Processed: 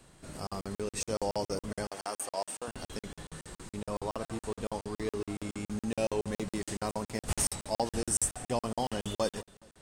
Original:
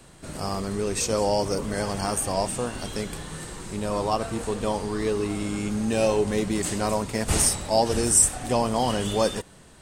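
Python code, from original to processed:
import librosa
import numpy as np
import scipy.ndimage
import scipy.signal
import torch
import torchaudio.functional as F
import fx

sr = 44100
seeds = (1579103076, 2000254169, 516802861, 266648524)

p1 = fx.highpass(x, sr, hz=410.0, slope=12, at=(1.88, 2.68))
p2 = p1 + fx.echo_feedback(p1, sr, ms=202, feedback_pct=45, wet_db=-23.0, dry=0)
p3 = fx.buffer_crackle(p2, sr, first_s=0.47, period_s=0.14, block=2048, kind='zero')
y = p3 * 10.0 ** (-8.0 / 20.0)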